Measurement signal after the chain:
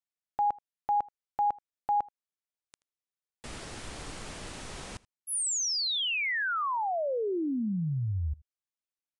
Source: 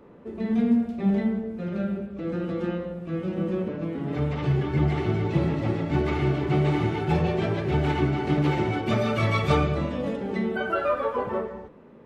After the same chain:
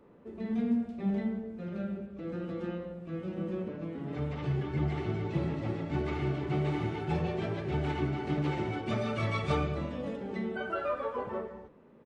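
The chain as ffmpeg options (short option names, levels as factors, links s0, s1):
-filter_complex "[0:a]asplit=2[s0][s1];[s1]aecho=0:1:80:0.0668[s2];[s0][s2]amix=inputs=2:normalize=0,aresample=22050,aresample=44100,volume=0.398"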